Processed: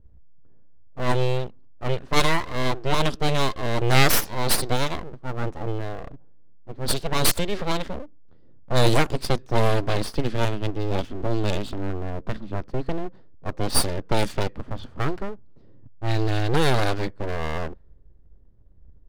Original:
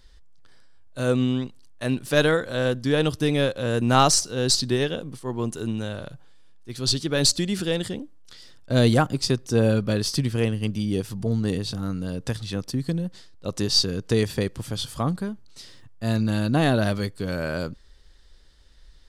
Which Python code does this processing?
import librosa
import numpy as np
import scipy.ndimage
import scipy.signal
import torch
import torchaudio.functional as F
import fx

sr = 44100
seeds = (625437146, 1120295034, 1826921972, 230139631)

y = fx.graphic_eq_31(x, sr, hz=(160, 1250, 3150), db=(7, -10, 11), at=(10.98, 11.9))
y = fx.env_lowpass(y, sr, base_hz=340.0, full_db=-16.0)
y = np.abs(y)
y = y * librosa.db_to_amplitude(3.0)